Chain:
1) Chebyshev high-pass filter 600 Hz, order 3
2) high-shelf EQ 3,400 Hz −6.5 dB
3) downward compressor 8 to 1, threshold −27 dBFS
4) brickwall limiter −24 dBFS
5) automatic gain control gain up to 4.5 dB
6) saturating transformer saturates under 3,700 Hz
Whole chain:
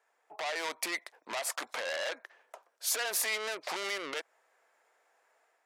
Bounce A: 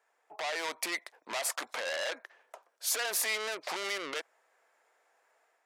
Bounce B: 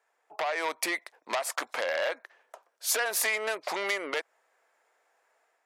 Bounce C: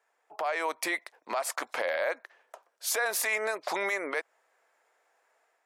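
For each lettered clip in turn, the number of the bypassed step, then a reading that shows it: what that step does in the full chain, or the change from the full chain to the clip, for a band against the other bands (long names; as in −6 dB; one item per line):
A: 3, average gain reduction 3.0 dB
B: 4, average gain reduction 1.5 dB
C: 6, change in crest factor −4.0 dB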